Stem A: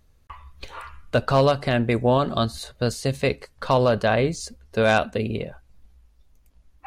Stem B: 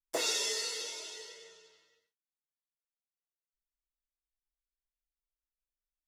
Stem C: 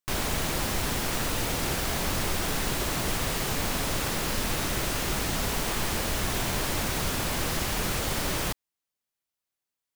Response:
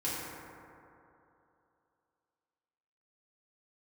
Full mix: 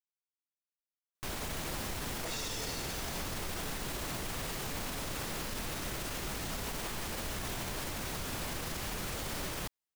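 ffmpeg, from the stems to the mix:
-filter_complex "[1:a]adelay=2100,volume=0.75[s0];[2:a]adelay=1150,volume=0.562[s1];[s0][s1]amix=inputs=2:normalize=0,alimiter=level_in=1.68:limit=0.0631:level=0:latency=1:release=48,volume=0.596"

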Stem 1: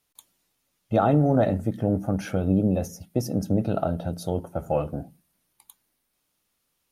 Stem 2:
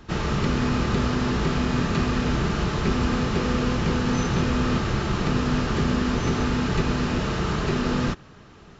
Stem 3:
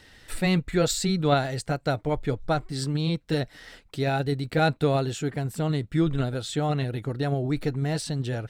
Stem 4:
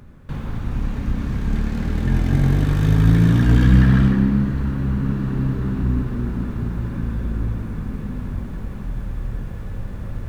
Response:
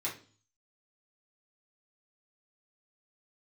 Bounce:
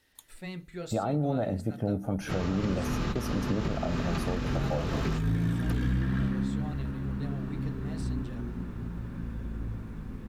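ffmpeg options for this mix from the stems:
-filter_complex "[0:a]volume=0.794,asplit=2[s0][s1];[1:a]adelay=2200,volume=0.531[s2];[2:a]volume=0.126,asplit=2[s3][s4];[s4]volume=0.282[s5];[3:a]adelay=2200,volume=0.237,asplit=2[s6][s7];[s7]volume=0.299[s8];[s1]apad=whole_len=484792[s9];[s2][s9]sidechaingate=range=0.0224:threshold=0.00282:ratio=16:detection=peak[s10];[4:a]atrim=start_sample=2205[s11];[s5][s8]amix=inputs=2:normalize=0[s12];[s12][s11]afir=irnorm=-1:irlink=0[s13];[s0][s10][s3][s6][s13]amix=inputs=5:normalize=0,alimiter=limit=0.106:level=0:latency=1:release=287"

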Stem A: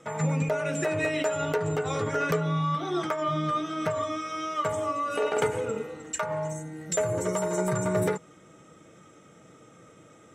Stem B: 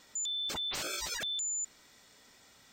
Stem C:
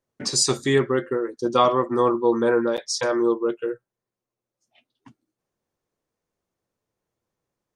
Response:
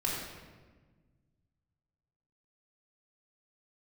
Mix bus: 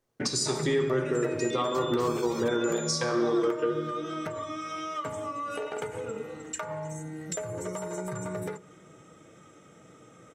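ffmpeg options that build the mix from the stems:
-filter_complex "[0:a]acompressor=threshold=0.0282:ratio=6,adelay=400,volume=0.891,asplit=2[s0][s1];[s1]volume=0.0668[s2];[1:a]adelay=1250,volume=0.596[s3];[2:a]acompressor=threshold=0.0447:ratio=6,volume=1.06,asplit=2[s4][s5];[s5]volume=0.473[s6];[3:a]atrim=start_sample=2205[s7];[s2][s6]amix=inputs=2:normalize=0[s8];[s8][s7]afir=irnorm=-1:irlink=0[s9];[s0][s3][s4][s9]amix=inputs=4:normalize=0,alimiter=limit=0.141:level=0:latency=1:release=310"

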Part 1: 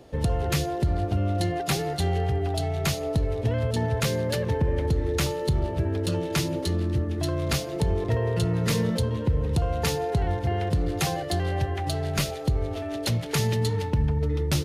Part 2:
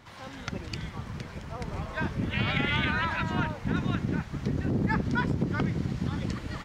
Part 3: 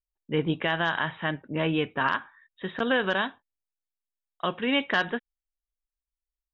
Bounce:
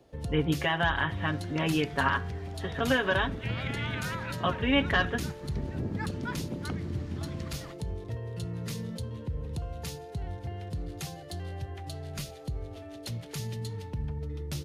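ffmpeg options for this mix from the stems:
-filter_complex "[0:a]acrossover=split=260|3000[s0][s1][s2];[s1]acompressor=threshold=0.0224:ratio=6[s3];[s0][s3][s2]amix=inputs=3:normalize=0,volume=0.299[s4];[1:a]adelay=1100,volume=0.398[s5];[2:a]aecho=1:1:7.2:0.65,volume=0.708[s6];[s4][s5][s6]amix=inputs=3:normalize=0"

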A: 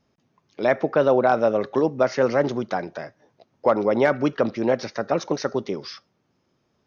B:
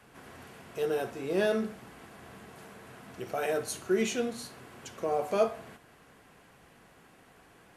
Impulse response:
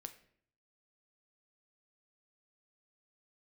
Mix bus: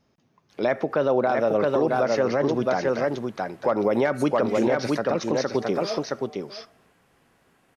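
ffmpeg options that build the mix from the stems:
-filter_complex "[0:a]volume=1.19,asplit=3[s0][s1][s2];[s1]volume=0.562[s3];[1:a]adelay=500,volume=0.422,asplit=3[s4][s5][s6];[s5]volume=0.562[s7];[s6]volume=0.299[s8];[s2]apad=whole_len=364326[s9];[s4][s9]sidechaincompress=threshold=0.0398:ratio=8:attack=16:release=126[s10];[2:a]atrim=start_sample=2205[s11];[s7][s11]afir=irnorm=-1:irlink=0[s12];[s3][s8]amix=inputs=2:normalize=0,aecho=0:1:667:1[s13];[s0][s10][s12][s13]amix=inputs=4:normalize=0,alimiter=limit=0.237:level=0:latency=1:release=106"

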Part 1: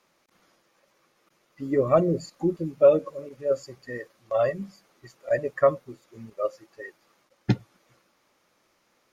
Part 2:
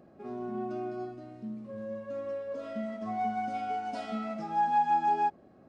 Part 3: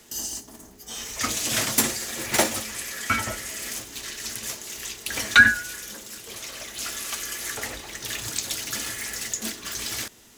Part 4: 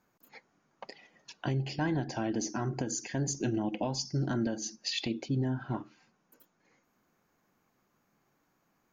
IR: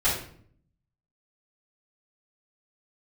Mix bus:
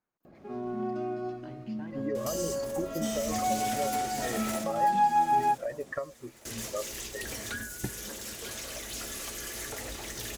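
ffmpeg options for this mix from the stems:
-filter_complex "[0:a]acompressor=threshold=0.0631:ratio=6,adelay=350,volume=1[s0];[1:a]adelay=250,volume=1.26[s1];[2:a]equalizer=f=560:w=1.5:g=3.5,acrossover=split=630|6500[s2][s3][s4];[s2]acompressor=threshold=0.00891:ratio=4[s5];[s3]acompressor=threshold=0.00891:ratio=4[s6];[s4]acompressor=threshold=0.01:ratio=4[s7];[s5][s6][s7]amix=inputs=3:normalize=0,asoftclip=type=tanh:threshold=0.0237,adelay=2150,volume=1.12,asplit=3[s8][s9][s10];[s8]atrim=end=4.64,asetpts=PTS-STARTPTS,afade=t=out:st=4.636:d=0.004:c=hsin[s11];[s9]atrim=start=4.64:end=6.45,asetpts=PTS-STARTPTS,volume=0[s12];[s10]atrim=start=6.45,asetpts=PTS-STARTPTS,afade=t=in:d=0.004:c=hsin[s13];[s11][s12][s13]concat=n=3:v=0:a=1,asplit=2[s14][s15];[s15]volume=0.266[s16];[3:a]volume=0.178[s17];[s0][s17]amix=inputs=2:normalize=0,bass=f=250:g=-5,treble=f=4000:g=-7,acompressor=threshold=0.0224:ratio=3,volume=1[s18];[s16]aecho=0:1:939|1878|2817|3756|4695:1|0.36|0.13|0.0467|0.0168[s19];[s1][s14][s18][s19]amix=inputs=4:normalize=0,lowshelf=f=67:g=7.5"

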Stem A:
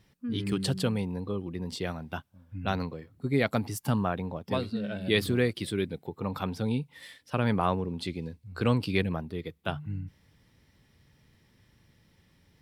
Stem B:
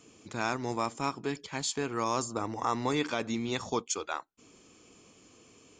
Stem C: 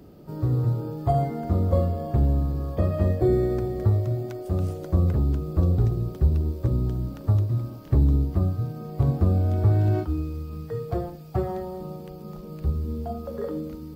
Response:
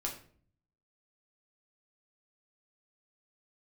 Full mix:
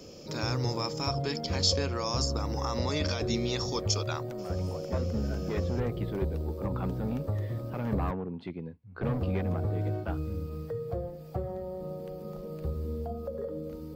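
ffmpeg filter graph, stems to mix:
-filter_complex "[0:a]highpass=110,volume=21.1,asoftclip=hard,volume=0.0473,lowpass=1700,adelay=400,volume=0.794[s0];[1:a]alimiter=limit=0.0708:level=0:latency=1:release=40,lowpass=f=5200:t=q:w=7.1,volume=0.944,asplit=2[s1][s2];[2:a]equalizer=f=520:t=o:w=0.36:g=14,bandreject=f=60:t=h:w=6,bandreject=f=120:t=h:w=6,acrossover=split=180|530[s3][s4][s5];[s3]acompressor=threshold=0.0398:ratio=4[s6];[s4]acompressor=threshold=0.0141:ratio=4[s7];[s5]acompressor=threshold=0.0112:ratio=4[s8];[s6][s7][s8]amix=inputs=3:normalize=0,volume=0.668,asplit=3[s9][s10][s11];[s9]atrim=end=8.11,asetpts=PTS-STARTPTS,afade=t=out:st=8.106:d=0.004:c=hsin[s12];[s10]atrim=start=8.11:end=9.03,asetpts=PTS-STARTPTS,volume=0[s13];[s11]atrim=start=9.03,asetpts=PTS-STARTPTS,afade=t=in:d=0.004:c=hsin[s14];[s12][s13][s14]concat=n=3:v=0:a=1[s15];[s2]apad=whole_len=573962[s16];[s0][s16]sidechaincompress=threshold=0.00355:ratio=8:attack=5.2:release=402[s17];[s17][s1][s15]amix=inputs=3:normalize=0"

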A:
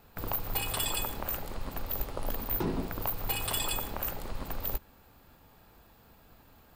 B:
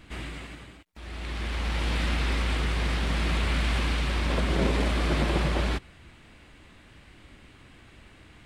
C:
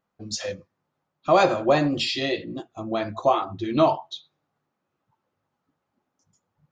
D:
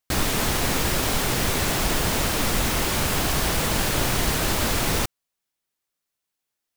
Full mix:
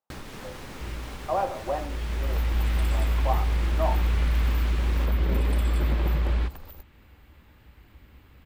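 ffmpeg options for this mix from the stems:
-filter_complex "[0:a]highshelf=f=4500:g=9,acompressor=threshold=0.0282:ratio=6,adelay=2050,volume=0.562[s0];[1:a]equalizer=f=65:w=1.8:g=12,adelay=700,volume=0.531[s1];[2:a]bandpass=f=770:t=q:w=2.2:csg=0,volume=0.596[s2];[3:a]acompressor=threshold=0.0562:ratio=6,volume=0.316[s3];[s0][s1][s2][s3]amix=inputs=4:normalize=0,highshelf=f=5200:g=-11.5,bandreject=f=680:w=12"

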